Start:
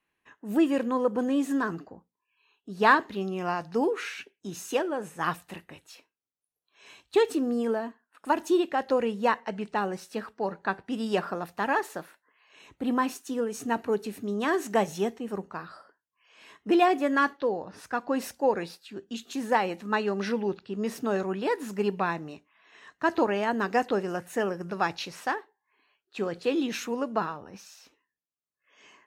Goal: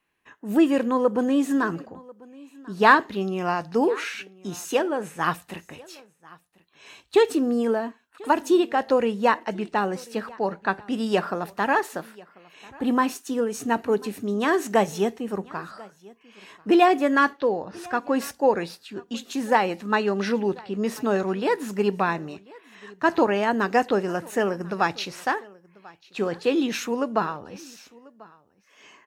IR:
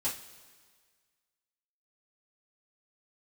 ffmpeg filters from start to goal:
-filter_complex "[0:a]asplit=2[link_01][link_02];[link_02]aecho=0:1:1041:0.0668[link_03];[link_01][link_03]amix=inputs=2:normalize=0,volume=4.5dB"

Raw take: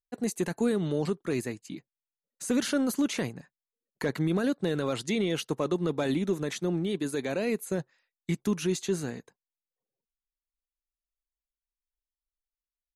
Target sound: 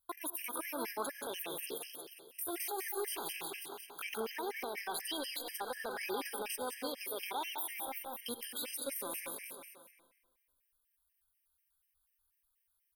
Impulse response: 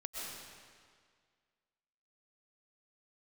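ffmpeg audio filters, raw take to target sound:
-filter_complex "[0:a]asetrate=62367,aresample=44100,atempo=0.707107,firequalizer=gain_entry='entry(110,0);entry(170,-18);entry(410,-6);entry(620,-12);entry(930,4);entry(3200,3);entry(7200,-5);entry(10000,13)':delay=0.05:min_phase=1,aecho=1:1:179|358|537|716|895:0.316|0.139|0.0612|0.0269|0.0119,acompressor=threshold=-49dB:ratio=2,asplit=2[link_01][link_02];[1:a]atrim=start_sample=2205,asetrate=57330,aresample=44100[link_03];[link_02][link_03]afir=irnorm=-1:irlink=0,volume=-5.5dB[link_04];[link_01][link_04]amix=inputs=2:normalize=0,alimiter=level_in=11dB:limit=-24dB:level=0:latency=1:release=65,volume=-11dB,lowshelf=frequency=95:gain=-8.5,afftfilt=real='re*gt(sin(2*PI*4.1*pts/sr)*(1-2*mod(floor(b*sr/1024/1600),2)),0)':imag='im*gt(sin(2*PI*4.1*pts/sr)*(1-2*mod(floor(b*sr/1024/1600),2)),0)':win_size=1024:overlap=0.75,volume=9dB"

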